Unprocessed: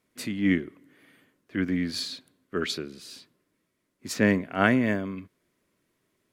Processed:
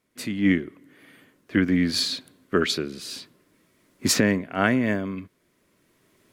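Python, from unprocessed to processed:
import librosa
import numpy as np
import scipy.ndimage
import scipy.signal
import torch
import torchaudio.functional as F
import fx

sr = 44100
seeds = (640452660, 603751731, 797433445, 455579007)

y = fx.recorder_agc(x, sr, target_db=-10.5, rise_db_per_s=7.8, max_gain_db=30)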